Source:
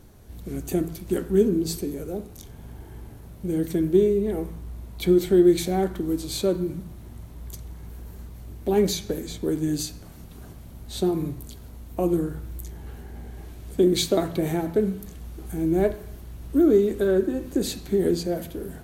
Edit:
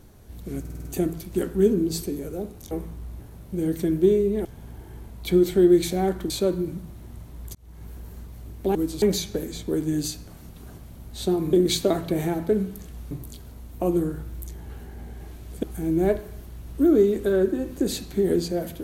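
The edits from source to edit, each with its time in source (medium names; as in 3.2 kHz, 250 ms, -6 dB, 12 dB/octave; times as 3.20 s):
0.60 s: stutter 0.05 s, 6 plays
2.46–3.11 s: swap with 4.36–4.85 s
6.05–6.32 s: move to 8.77 s
7.57–7.87 s: fade in
13.80–15.38 s: move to 11.28 s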